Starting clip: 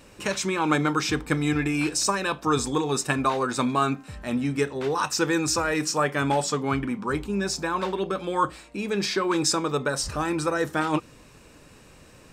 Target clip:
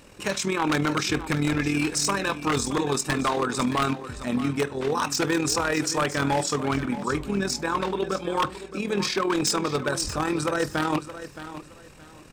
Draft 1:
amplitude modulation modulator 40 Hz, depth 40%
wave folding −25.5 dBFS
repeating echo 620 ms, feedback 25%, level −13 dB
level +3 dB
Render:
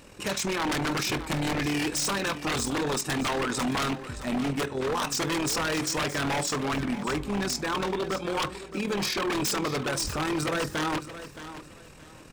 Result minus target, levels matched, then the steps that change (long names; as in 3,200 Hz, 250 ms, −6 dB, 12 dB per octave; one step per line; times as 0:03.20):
wave folding: distortion +11 dB
change: wave folding −19.5 dBFS